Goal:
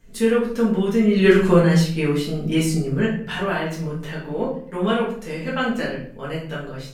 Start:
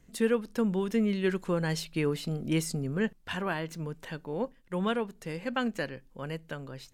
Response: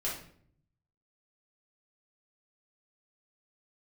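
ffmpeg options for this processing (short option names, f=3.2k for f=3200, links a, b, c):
-filter_complex "[0:a]asettb=1/sr,asplit=3[a][b][c];[a]atrim=end=1.164[d];[b]atrim=start=1.16:end=1.61,asetpts=PTS-STARTPTS,afade=t=in:d=0.004:c=qsin,afade=t=out:st=0.446:d=0.004:c=qsin,acontrast=83[e];[c]atrim=start=1.606[f];[d][e]acrossfade=d=0.004:c1=hsin:c2=qsin[g];[g][f]acrossfade=d=0.004:c1=qsin:c2=hsin[h];[1:a]atrim=start_sample=2205[i];[h][i]afir=irnorm=-1:irlink=0,volume=4.5dB"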